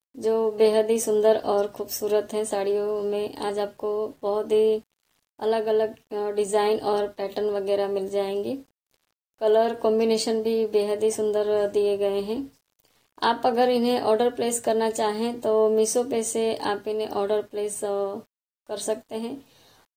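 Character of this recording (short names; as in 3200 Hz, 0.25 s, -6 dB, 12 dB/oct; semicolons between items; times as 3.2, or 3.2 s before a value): a quantiser's noise floor 10-bit, dither none; AAC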